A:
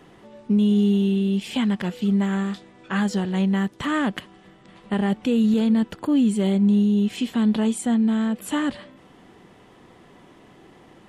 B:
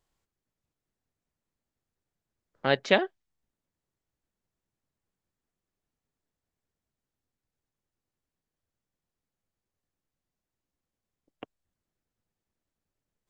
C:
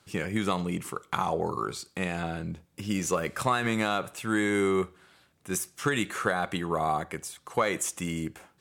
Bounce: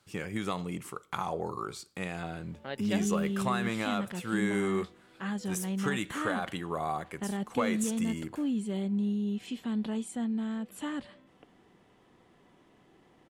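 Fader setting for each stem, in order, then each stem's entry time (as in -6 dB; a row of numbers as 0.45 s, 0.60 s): -12.0 dB, -14.5 dB, -5.5 dB; 2.30 s, 0.00 s, 0.00 s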